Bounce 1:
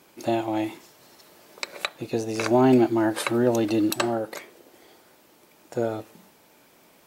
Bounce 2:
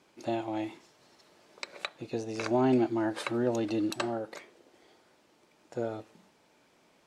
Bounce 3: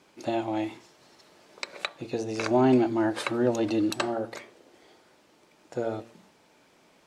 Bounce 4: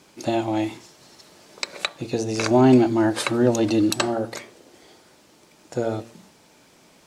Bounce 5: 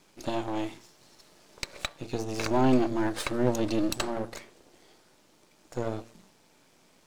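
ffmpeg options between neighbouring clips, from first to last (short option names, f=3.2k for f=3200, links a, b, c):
-af "lowpass=7.1k,volume=-7.5dB"
-af "bandreject=f=116.1:t=h:w=4,bandreject=f=232.2:t=h:w=4,bandreject=f=348.3:t=h:w=4,bandreject=f=464.4:t=h:w=4,bandreject=f=580.5:t=h:w=4,bandreject=f=696.6:t=h:w=4,bandreject=f=812.7:t=h:w=4,bandreject=f=928.8:t=h:w=4,bandreject=f=1.0449k:t=h:w=4,bandreject=f=1.161k:t=h:w=4,volume=4.5dB"
-af "bass=f=250:g=5,treble=f=4k:g=7,volume=4.5dB"
-af "aeval=exprs='if(lt(val(0),0),0.251*val(0),val(0))':c=same,volume=-4.5dB"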